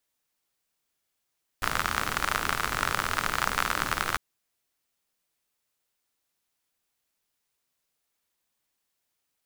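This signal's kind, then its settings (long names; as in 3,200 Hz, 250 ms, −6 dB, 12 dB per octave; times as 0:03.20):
rain-like ticks over hiss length 2.55 s, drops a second 56, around 1,300 Hz, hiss −6 dB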